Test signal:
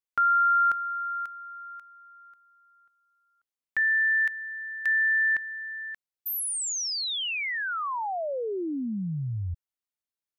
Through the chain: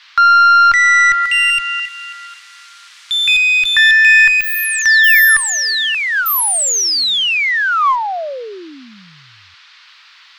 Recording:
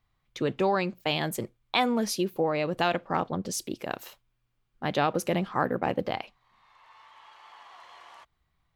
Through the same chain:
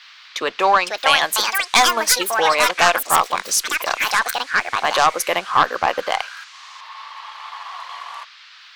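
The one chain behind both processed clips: high-pass 830 Hz 12 dB/octave; peaking EQ 1.1 kHz +6.5 dB 0.31 oct; transient shaper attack -1 dB, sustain -7 dB; Chebyshev shaper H 2 -7 dB, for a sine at -5 dBFS; band noise 1.1–4.6 kHz -60 dBFS; sine folder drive 18 dB, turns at 0.5 dBFS; ever faster or slower copies 613 ms, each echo +6 st, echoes 2; trim -6.5 dB

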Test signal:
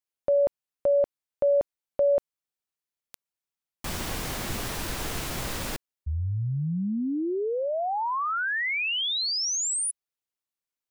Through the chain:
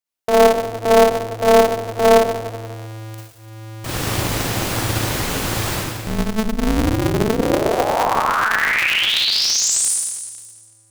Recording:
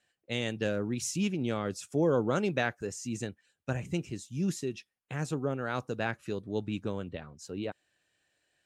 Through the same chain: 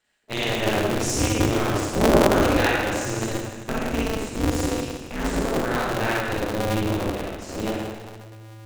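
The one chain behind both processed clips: in parallel at -7 dB: hysteresis with a dead band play -41 dBFS; on the sum: Schroeder reverb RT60 1.5 s, DRR -6 dB; polarity switched at an audio rate 110 Hz

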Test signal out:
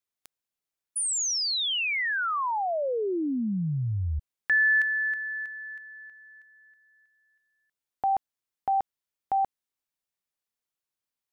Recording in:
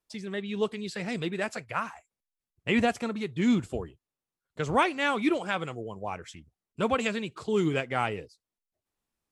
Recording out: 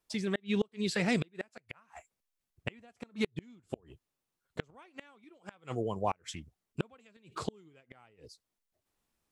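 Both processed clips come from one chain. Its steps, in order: inverted gate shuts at -22 dBFS, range -36 dB; trim +4 dB

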